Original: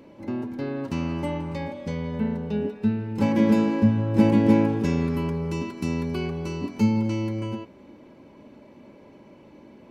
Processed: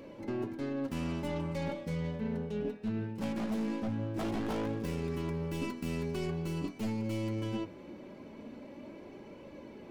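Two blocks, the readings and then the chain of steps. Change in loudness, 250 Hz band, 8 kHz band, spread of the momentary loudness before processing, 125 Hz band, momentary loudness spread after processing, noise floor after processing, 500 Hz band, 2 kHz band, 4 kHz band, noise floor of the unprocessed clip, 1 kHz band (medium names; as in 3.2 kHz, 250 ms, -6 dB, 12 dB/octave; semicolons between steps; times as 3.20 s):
-11.0 dB, -12.5 dB, no reading, 12 LU, -10.0 dB, 14 LU, -50 dBFS, -8.5 dB, -8.0 dB, -6.0 dB, -50 dBFS, -9.5 dB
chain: tracing distortion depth 0.25 ms; peaking EQ 940 Hz -3.5 dB 0.35 oct; hum notches 50/100/150/200/250 Hz; wavefolder -15.5 dBFS; flange 0.21 Hz, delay 1.7 ms, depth 5.7 ms, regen +63%; reverse; compression 12:1, threshold -37 dBFS, peak gain reduction 17.5 dB; reverse; trim +5.5 dB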